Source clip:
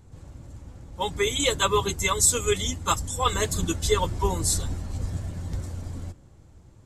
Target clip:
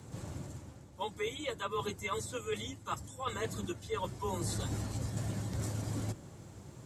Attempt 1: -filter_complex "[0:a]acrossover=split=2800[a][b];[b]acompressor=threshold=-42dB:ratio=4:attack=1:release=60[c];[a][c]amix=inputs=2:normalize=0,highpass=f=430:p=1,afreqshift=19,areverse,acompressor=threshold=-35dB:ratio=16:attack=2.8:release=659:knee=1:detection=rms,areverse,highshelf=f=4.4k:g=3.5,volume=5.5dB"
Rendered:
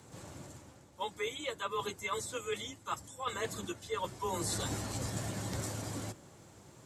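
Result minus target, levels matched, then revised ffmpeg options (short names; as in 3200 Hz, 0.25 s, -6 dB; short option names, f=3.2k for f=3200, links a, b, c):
125 Hz band -4.5 dB
-filter_complex "[0:a]acrossover=split=2800[a][b];[b]acompressor=threshold=-42dB:ratio=4:attack=1:release=60[c];[a][c]amix=inputs=2:normalize=0,highpass=f=130:p=1,afreqshift=19,areverse,acompressor=threshold=-35dB:ratio=16:attack=2.8:release=659:knee=1:detection=rms,areverse,highshelf=f=4.4k:g=3.5,volume=5.5dB"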